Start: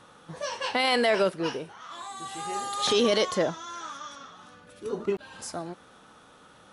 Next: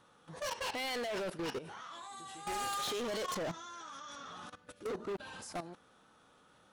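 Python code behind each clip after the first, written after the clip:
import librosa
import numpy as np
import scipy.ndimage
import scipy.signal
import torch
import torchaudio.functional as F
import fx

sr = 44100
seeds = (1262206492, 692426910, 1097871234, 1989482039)

y = fx.level_steps(x, sr, step_db=17)
y = np.clip(y, -10.0 ** (-38.0 / 20.0), 10.0 ** (-38.0 / 20.0))
y = fx.wow_flutter(y, sr, seeds[0], rate_hz=2.1, depth_cents=19.0)
y = y * 10.0 ** (3.0 / 20.0)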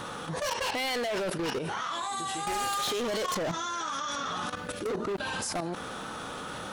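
y = fx.env_flatten(x, sr, amount_pct=70)
y = y * 10.0 ** (6.0 / 20.0)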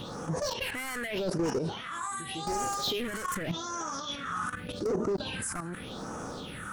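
y = fx.phaser_stages(x, sr, stages=4, low_hz=570.0, high_hz=3400.0, hz=0.85, feedback_pct=50)
y = y * 10.0 ** (1.0 / 20.0)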